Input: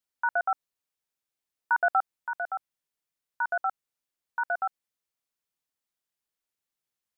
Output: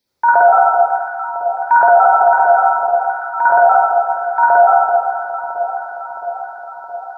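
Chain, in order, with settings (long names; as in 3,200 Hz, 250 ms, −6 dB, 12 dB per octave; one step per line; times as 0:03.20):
dynamic equaliser 680 Hz, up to +5 dB, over −43 dBFS, Q 1.9
delay that swaps between a low-pass and a high-pass 334 ms, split 1,100 Hz, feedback 80%, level −10 dB
convolution reverb RT60 1.0 s, pre-delay 47 ms, DRR −5.5 dB
boost into a limiter +9 dB
level −1 dB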